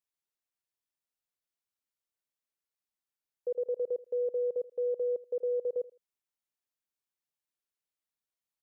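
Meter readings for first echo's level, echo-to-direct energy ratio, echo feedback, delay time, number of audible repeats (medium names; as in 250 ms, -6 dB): -20.0 dB, -20.0 dB, 22%, 80 ms, 2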